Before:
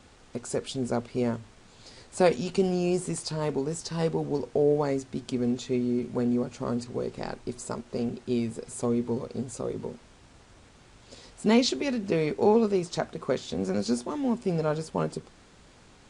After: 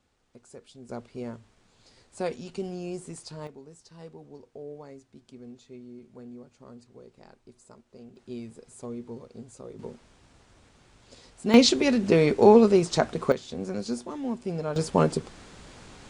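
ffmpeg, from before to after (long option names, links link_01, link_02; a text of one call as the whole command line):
ffmpeg -i in.wav -af "asetnsamples=nb_out_samples=441:pad=0,asendcmd='0.89 volume volume -9dB;3.47 volume volume -18dB;8.16 volume volume -10.5dB;9.79 volume volume -3.5dB;11.54 volume volume 6dB;13.32 volume volume -4dB;14.76 volume volume 7dB',volume=-17dB" out.wav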